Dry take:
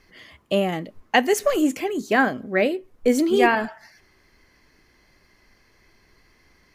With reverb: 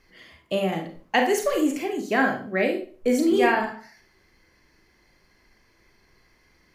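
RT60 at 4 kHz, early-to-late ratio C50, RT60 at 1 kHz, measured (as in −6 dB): 0.35 s, 7.0 dB, 0.40 s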